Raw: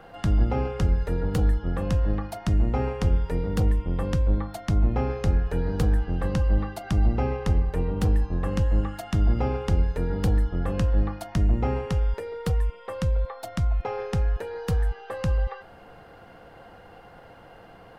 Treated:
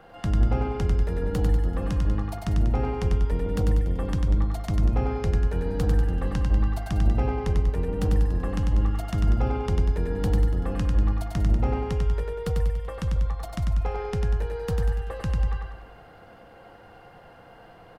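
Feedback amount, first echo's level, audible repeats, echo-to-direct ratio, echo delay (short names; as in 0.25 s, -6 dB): 49%, -3.5 dB, 6, -2.5 dB, 96 ms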